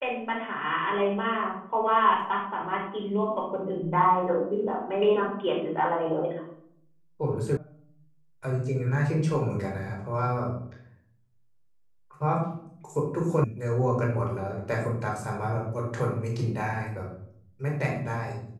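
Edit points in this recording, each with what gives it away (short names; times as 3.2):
7.57 sound cut off
13.44 sound cut off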